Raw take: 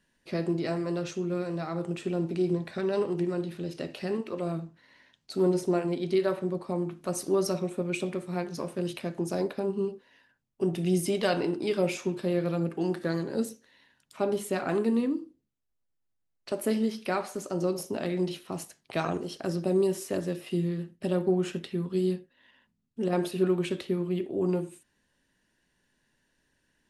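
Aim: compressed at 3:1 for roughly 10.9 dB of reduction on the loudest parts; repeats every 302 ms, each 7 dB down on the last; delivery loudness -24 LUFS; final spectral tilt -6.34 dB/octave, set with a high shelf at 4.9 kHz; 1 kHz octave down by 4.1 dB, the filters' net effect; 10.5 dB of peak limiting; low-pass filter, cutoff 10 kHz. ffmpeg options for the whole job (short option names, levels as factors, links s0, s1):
-af "lowpass=10000,equalizer=f=1000:t=o:g=-6,highshelf=f=4900:g=-6,acompressor=threshold=0.0158:ratio=3,alimiter=level_in=2.99:limit=0.0631:level=0:latency=1,volume=0.335,aecho=1:1:302|604|906|1208|1510:0.447|0.201|0.0905|0.0407|0.0183,volume=7.94"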